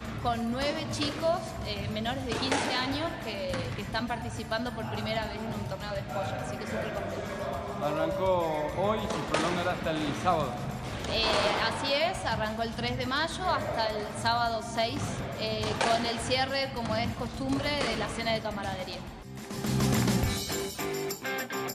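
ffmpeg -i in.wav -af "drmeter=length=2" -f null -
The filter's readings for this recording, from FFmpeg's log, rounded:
Channel 1: DR: 13.6
Overall DR: 13.6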